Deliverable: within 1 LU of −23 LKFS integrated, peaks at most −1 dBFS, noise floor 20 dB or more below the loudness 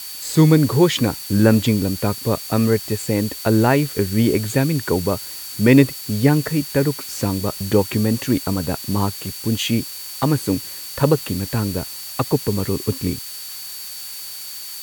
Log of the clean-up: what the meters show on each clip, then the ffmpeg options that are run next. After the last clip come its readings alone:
interfering tone 4,500 Hz; level of the tone −37 dBFS; background noise floor −33 dBFS; target noise floor −40 dBFS; integrated loudness −20.0 LKFS; sample peak −1.5 dBFS; target loudness −23.0 LKFS
→ -af "bandreject=frequency=4500:width=30"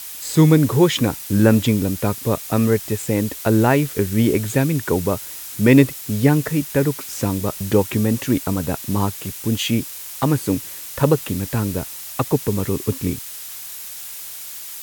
interfering tone none found; background noise floor −34 dBFS; target noise floor −40 dBFS
→ -af "afftdn=noise_reduction=6:noise_floor=-34"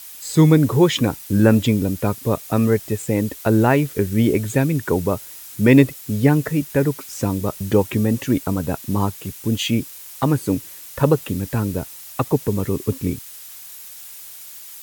background noise floor −39 dBFS; target noise floor −40 dBFS
→ -af "afftdn=noise_reduction=6:noise_floor=-39"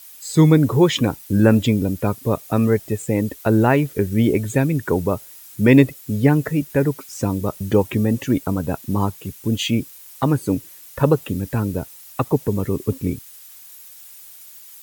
background noise floor −43 dBFS; integrated loudness −20.0 LKFS; sample peak −1.5 dBFS; target loudness −23.0 LKFS
→ -af "volume=-3dB"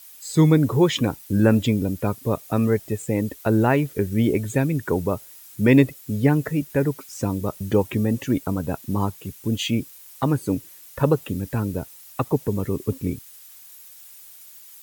integrated loudness −23.0 LKFS; sample peak −4.5 dBFS; background noise floor −46 dBFS

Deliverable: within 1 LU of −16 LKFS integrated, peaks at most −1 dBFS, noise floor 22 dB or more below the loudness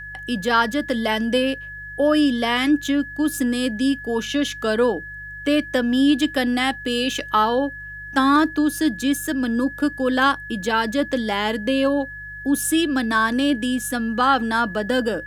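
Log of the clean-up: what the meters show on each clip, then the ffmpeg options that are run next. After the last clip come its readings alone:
mains hum 50 Hz; hum harmonics up to 150 Hz; level of the hum −41 dBFS; interfering tone 1,700 Hz; level of the tone −33 dBFS; integrated loudness −21.0 LKFS; sample peak −4.5 dBFS; target loudness −16.0 LKFS
→ -af "bandreject=frequency=50:width_type=h:width=4,bandreject=frequency=100:width_type=h:width=4,bandreject=frequency=150:width_type=h:width=4"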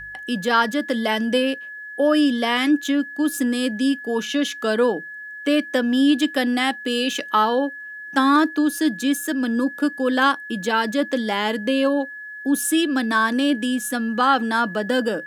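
mains hum none found; interfering tone 1,700 Hz; level of the tone −33 dBFS
→ -af "bandreject=frequency=1700:width=30"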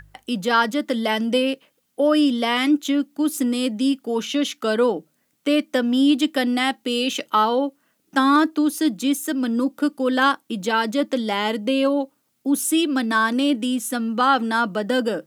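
interfering tone none found; integrated loudness −21.0 LKFS; sample peak −5.0 dBFS; target loudness −16.0 LKFS
→ -af "volume=5dB,alimiter=limit=-1dB:level=0:latency=1"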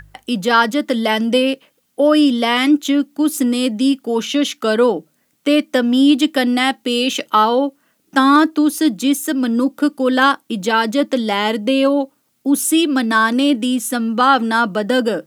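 integrated loudness −16.0 LKFS; sample peak −1.0 dBFS; background noise floor −64 dBFS

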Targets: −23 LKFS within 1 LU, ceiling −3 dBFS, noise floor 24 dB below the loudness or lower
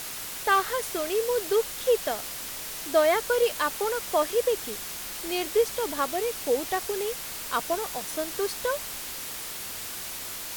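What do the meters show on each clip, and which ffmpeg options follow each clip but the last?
background noise floor −37 dBFS; target noise floor −52 dBFS; integrated loudness −27.5 LKFS; sample peak −10.5 dBFS; target loudness −23.0 LKFS
→ -af "afftdn=noise_reduction=15:noise_floor=-37"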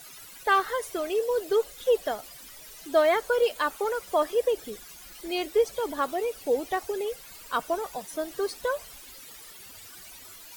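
background noise floor −47 dBFS; target noise floor −52 dBFS
→ -af "afftdn=noise_reduction=6:noise_floor=-47"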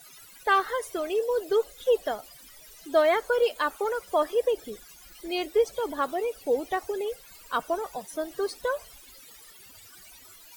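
background noise floor −51 dBFS; target noise floor −52 dBFS
→ -af "afftdn=noise_reduction=6:noise_floor=-51"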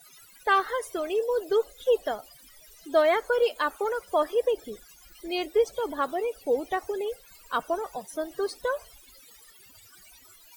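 background noise floor −54 dBFS; integrated loudness −28.0 LKFS; sample peak −11.5 dBFS; target loudness −23.0 LKFS
→ -af "volume=5dB"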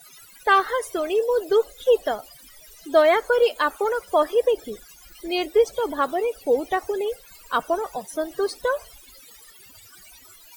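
integrated loudness −23.0 LKFS; sample peak −6.5 dBFS; background noise floor −49 dBFS

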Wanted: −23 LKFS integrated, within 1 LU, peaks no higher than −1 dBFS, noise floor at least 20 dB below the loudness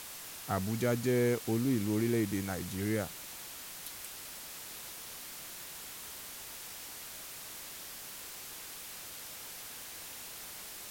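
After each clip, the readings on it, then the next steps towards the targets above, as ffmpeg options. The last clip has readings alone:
background noise floor −46 dBFS; target noise floor −57 dBFS; integrated loudness −37.0 LKFS; sample peak −17.5 dBFS; target loudness −23.0 LKFS
→ -af "afftdn=noise_reduction=11:noise_floor=-46"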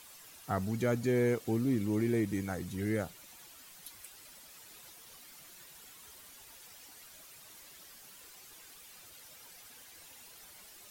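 background noise floor −55 dBFS; integrated loudness −32.5 LKFS; sample peak −18.0 dBFS; target loudness −23.0 LKFS
→ -af "volume=9.5dB"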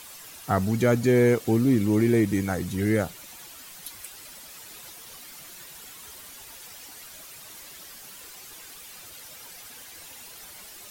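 integrated loudness −23.0 LKFS; sample peak −8.5 dBFS; background noise floor −45 dBFS

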